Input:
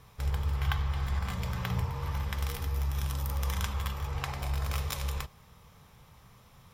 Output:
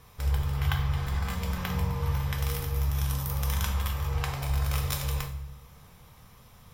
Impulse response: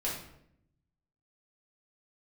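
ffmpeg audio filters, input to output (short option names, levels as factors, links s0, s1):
-filter_complex "[0:a]asplit=2[s0][s1];[1:a]atrim=start_sample=2205,highshelf=f=6500:g=11.5[s2];[s1][s2]afir=irnorm=-1:irlink=0,volume=0.501[s3];[s0][s3]amix=inputs=2:normalize=0,volume=0.794"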